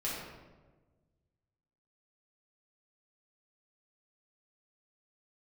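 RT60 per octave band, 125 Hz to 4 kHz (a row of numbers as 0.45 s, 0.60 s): 2.1 s, 1.7 s, 1.5 s, 1.2 s, 0.90 s, 0.75 s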